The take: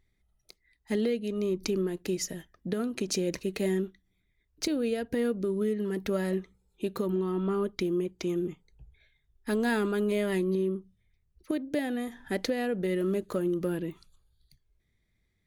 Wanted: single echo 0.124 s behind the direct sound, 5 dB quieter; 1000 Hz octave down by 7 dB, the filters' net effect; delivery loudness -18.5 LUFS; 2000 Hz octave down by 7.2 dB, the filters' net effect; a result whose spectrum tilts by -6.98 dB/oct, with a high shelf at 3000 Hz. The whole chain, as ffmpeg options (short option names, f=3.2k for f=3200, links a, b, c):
-af "equalizer=f=1k:t=o:g=-8.5,equalizer=f=2k:t=o:g=-4,highshelf=f=3k:g=-6,aecho=1:1:124:0.562,volume=12.5dB"